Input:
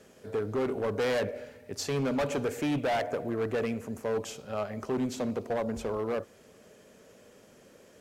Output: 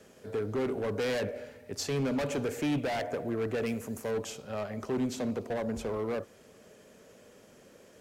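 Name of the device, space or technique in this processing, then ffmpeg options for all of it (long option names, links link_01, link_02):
one-band saturation: -filter_complex "[0:a]asettb=1/sr,asplit=3[link_01][link_02][link_03];[link_01]atrim=end=3.664[link_04];[link_02]atrim=start=3.66:end=4.11,asetpts=PTS-STARTPTS,afade=type=in:duration=0.004:curve=qsin,afade=type=out:start_time=0.446:duration=0.004:curve=qsin,aemphasis=mode=production:type=cd[link_05];[link_03]atrim=start=4.106[link_06];[link_04][link_05]acrossfade=duration=0.004:curve1=hsin:curve2=qsin[link_07];[link_07][link_06]acrossfade=duration=0.004:curve1=qsin:curve2=hsin,acrossover=split=390|2100[link_08][link_09][link_10];[link_09]asoftclip=type=tanh:threshold=-32dB[link_11];[link_08][link_11][link_10]amix=inputs=3:normalize=0"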